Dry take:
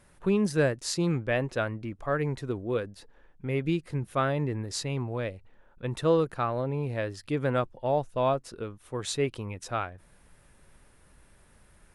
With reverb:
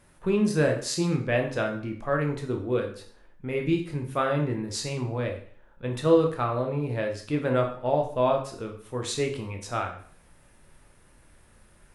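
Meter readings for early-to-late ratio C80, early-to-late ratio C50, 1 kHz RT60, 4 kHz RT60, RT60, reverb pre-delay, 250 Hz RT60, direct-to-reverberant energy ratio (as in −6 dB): 12.5 dB, 8.0 dB, 0.50 s, 0.50 s, 0.50 s, 6 ms, 0.50 s, 2.5 dB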